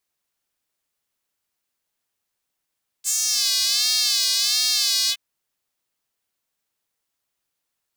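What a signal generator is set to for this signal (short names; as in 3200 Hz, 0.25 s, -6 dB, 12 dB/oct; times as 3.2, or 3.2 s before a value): synth patch with vibrato A#2, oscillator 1 triangle, oscillator 2 square, interval +12 st, detune 23 cents, oscillator 2 level -6 dB, sub -18 dB, filter highpass, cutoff 2700 Hz, Q 3.4, filter envelope 1.5 oct, filter decay 0.42 s, filter sustain 50%, attack 43 ms, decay 0.09 s, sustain -2 dB, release 0.06 s, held 2.06 s, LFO 1.4 Hz, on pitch 95 cents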